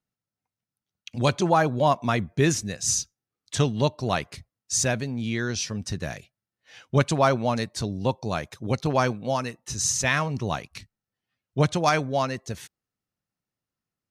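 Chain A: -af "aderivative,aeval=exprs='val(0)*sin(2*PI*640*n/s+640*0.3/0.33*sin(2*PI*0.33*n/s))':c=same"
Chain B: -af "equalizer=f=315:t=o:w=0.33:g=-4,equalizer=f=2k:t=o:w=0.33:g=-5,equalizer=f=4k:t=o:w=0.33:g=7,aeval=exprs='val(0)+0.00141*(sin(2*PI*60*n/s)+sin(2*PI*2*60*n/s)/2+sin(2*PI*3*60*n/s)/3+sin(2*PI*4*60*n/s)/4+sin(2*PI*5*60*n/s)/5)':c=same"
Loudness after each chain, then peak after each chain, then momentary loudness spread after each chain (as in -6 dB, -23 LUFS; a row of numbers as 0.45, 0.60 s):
-36.0, -25.5 LUFS; -13.5, -6.5 dBFS; 21, 13 LU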